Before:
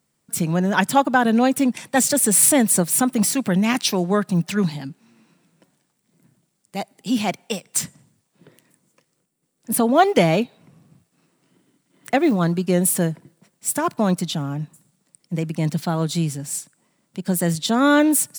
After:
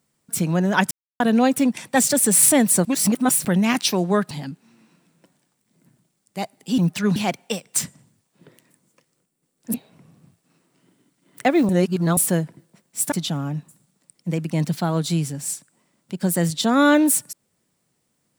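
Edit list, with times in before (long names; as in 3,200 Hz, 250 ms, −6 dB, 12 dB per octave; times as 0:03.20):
0:00.91–0:01.20: silence
0:02.85–0:03.45: reverse
0:04.31–0:04.69: move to 0:07.16
0:09.74–0:10.42: remove
0:12.37–0:12.85: reverse
0:13.80–0:14.17: remove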